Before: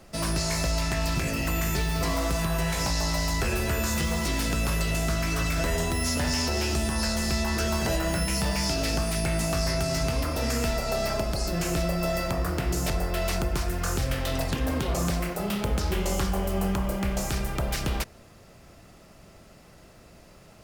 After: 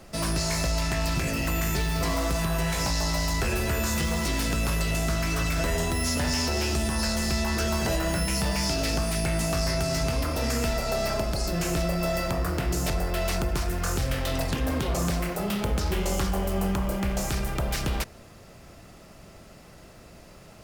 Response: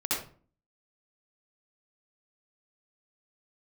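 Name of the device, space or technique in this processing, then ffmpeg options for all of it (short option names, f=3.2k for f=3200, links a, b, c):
parallel distortion: -filter_complex "[0:a]asplit=2[a][b];[b]asoftclip=type=hard:threshold=-35.5dB,volume=-5dB[c];[a][c]amix=inputs=2:normalize=0,volume=-1dB"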